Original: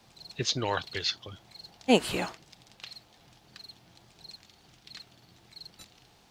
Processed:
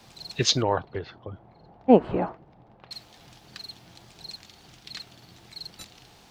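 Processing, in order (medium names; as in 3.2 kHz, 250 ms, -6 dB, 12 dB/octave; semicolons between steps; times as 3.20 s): 0.62–2.91 s: Chebyshev low-pass 820 Hz, order 2; trim +7 dB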